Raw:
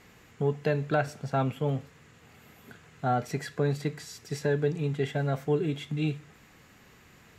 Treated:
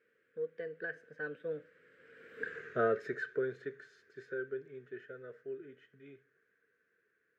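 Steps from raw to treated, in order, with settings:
source passing by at 0:02.56, 36 m/s, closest 5 metres
pair of resonant band-passes 850 Hz, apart 1.8 octaves
level +18 dB

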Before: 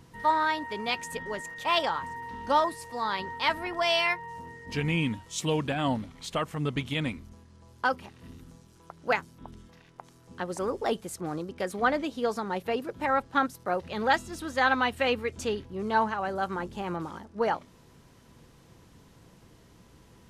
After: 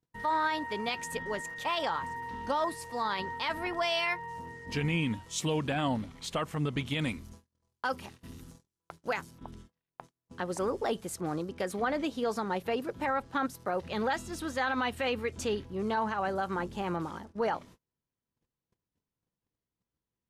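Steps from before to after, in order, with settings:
noise gate −49 dBFS, range −36 dB
0:06.99–0:09.31: high-shelf EQ 4,700 Hz +8 dB
brickwall limiter −21.5 dBFS, peak gain reduction 9.5 dB

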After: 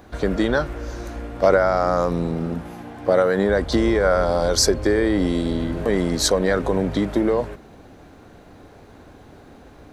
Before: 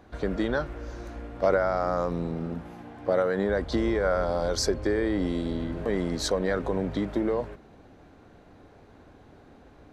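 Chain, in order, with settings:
high-shelf EQ 7,300 Hz +10.5 dB
level +7 dB

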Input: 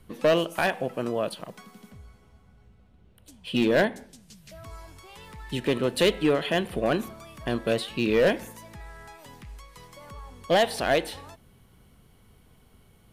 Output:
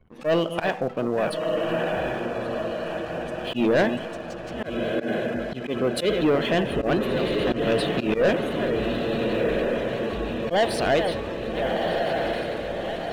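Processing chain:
delay that plays each chunk backwards 470 ms, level −11 dB
high-shelf EQ 2,200 Hz −3.5 dB
feedback delay with all-pass diffusion 1,337 ms, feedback 58%, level −5 dB
volume swells 103 ms
on a send at −22.5 dB: convolution reverb RT60 1.3 s, pre-delay 42 ms
on the sum: gate on every frequency bin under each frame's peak −30 dB strong
leveller curve on the samples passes 2
0:04.64–0:06.21: notch comb filter 910 Hz
level −2.5 dB

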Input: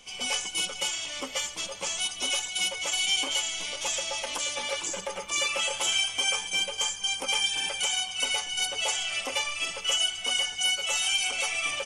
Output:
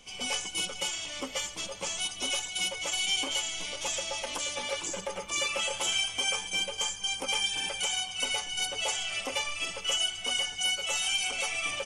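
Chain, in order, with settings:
low-shelf EQ 430 Hz +6 dB
level −3 dB

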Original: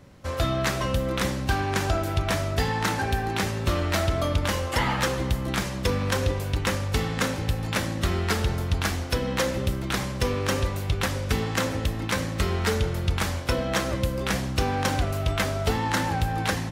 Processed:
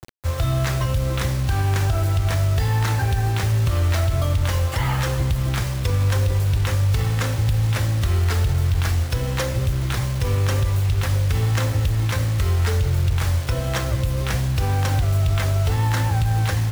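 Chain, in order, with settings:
low shelf with overshoot 150 Hz +7.5 dB, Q 3
brickwall limiter −12.5 dBFS, peak gain reduction 9.5 dB
bit reduction 6 bits

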